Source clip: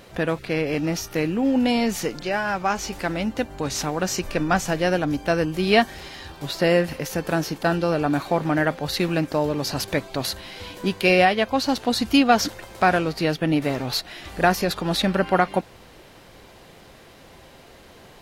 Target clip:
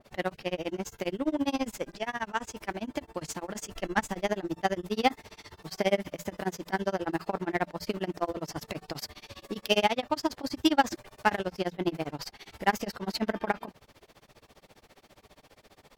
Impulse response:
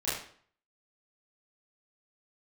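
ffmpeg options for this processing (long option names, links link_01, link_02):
-filter_complex "[0:a]bandreject=frequency=50:width_type=h:width=6,bandreject=frequency=100:width_type=h:width=6,bandreject=frequency=150:width_type=h:width=6,tremolo=f=13:d=0.98,asetrate=50274,aresample=44100,asplit=2[link_01][link_02];[link_02]acrusher=bits=2:mix=0:aa=0.5,volume=-10dB[link_03];[link_01][link_03]amix=inputs=2:normalize=0,adynamicequalizer=threshold=0.0112:dfrequency=1900:dqfactor=0.7:tfrequency=1900:tqfactor=0.7:attack=5:release=100:ratio=0.375:range=2:mode=cutabove:tftype=highshelf,volume=-6dB"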